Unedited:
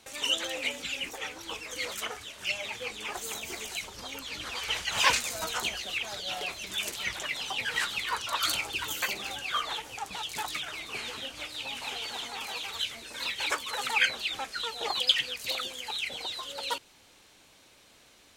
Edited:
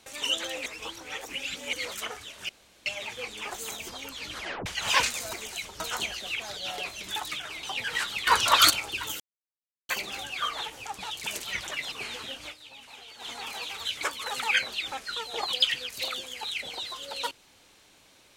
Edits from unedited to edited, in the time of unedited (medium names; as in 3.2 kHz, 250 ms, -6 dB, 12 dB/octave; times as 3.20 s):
0.66–1.73 s: reverse
2.49 s: insert room tone 0.37 s
3.52–3.99 s: move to 5.43 s
4.49 s: tape stop 0.27 s
6.79–7.44 s: swap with 10.39–10.86 s
8.08–8.51 s: gain +10.5 dB
9.01 s: insert silence 0.69 s
11.39–12.24 s: dip -11 dB, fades 0.12 s
12.95–13.48 s: delete